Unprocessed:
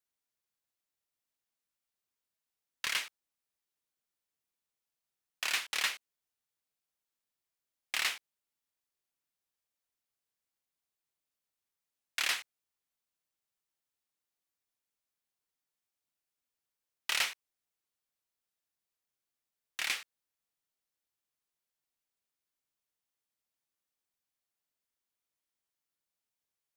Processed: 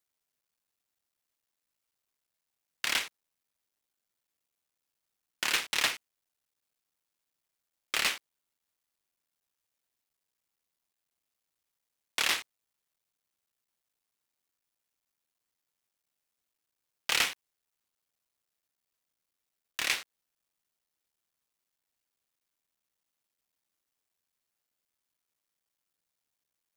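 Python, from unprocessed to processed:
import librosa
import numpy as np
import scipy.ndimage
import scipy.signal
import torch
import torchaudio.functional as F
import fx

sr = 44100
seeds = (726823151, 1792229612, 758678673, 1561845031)

y = fx.cycle_switch(x, sr, every=3, mode='muted')
y = F.gain(torch.from_numpy(y), 5.5).numpy()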